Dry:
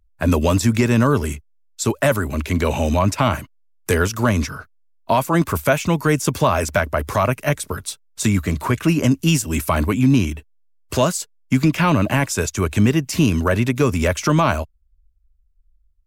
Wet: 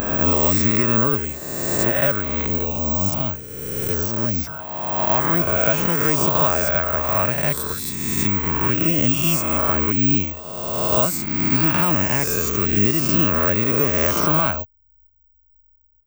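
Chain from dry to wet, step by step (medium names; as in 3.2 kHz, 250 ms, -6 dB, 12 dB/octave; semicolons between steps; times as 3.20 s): reverse spectral sustain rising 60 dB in 1.82 s; 2.46–4.47 s: peaking EQ 1.5 kHz -12 dB 2.2 oct; careless resampling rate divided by 2×, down filtered, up zero stuff; trim -7.5 dB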